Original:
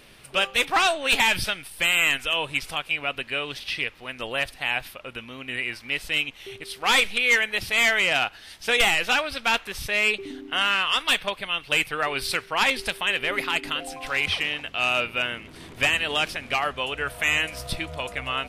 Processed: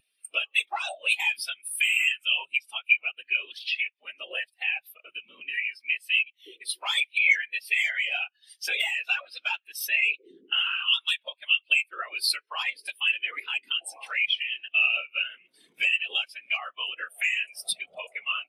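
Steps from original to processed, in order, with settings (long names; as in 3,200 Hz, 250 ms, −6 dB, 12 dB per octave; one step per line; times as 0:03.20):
high-pass filter 60 Hz
random phases in short frames
downward compressor 4 to 1, threshold −34 dBFS, peak gain reduction 15.5 dB
RIAA equalisation recording
every bin expanded away from the loudest bin 2.5 to 1
level +5.5 dB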